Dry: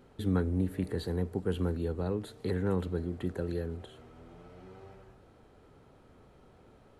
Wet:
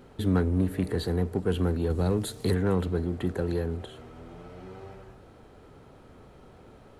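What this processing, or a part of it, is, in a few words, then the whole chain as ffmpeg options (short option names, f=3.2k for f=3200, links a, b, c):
parallel distortion: -filter_complex "[0:a]asettb=1/sr,asplit=3[a][b][c];[a]atrim=end=1.904[d];[b]atrim=start=1.9:end=2.55,asetpts=PTS-STARTPTS,afade=t=in:d=0.004:c=qsin,afade=t=out:st=0.646:d=0.004:c=qsin,bass=f=250:g=4,treble=f=4k:g=11[e];[c]atrim=start=2.546[f];[d][e]acrossfade=d=0.004:c1=hsin:c2=qsin[g];[g][f]acrossfade=d=0.004:c1=qsin:c2=hsin,asplit=2[h][i];[i]asoftclip=type=hard:threshold=-34dB,volume=-5dB[j];[h][j]amix=inputs=2:normalize=0,volume=3dB"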